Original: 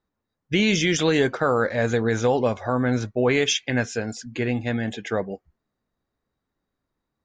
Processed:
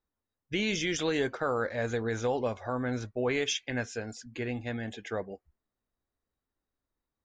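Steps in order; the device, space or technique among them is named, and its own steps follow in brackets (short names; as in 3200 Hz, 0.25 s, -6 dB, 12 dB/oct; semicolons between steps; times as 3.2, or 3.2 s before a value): low shelf boost with a cut just above (low shelf 86 Hz +5.5 dB; bell 160 Hz -6 dB 1 oct); gain -8.5 dB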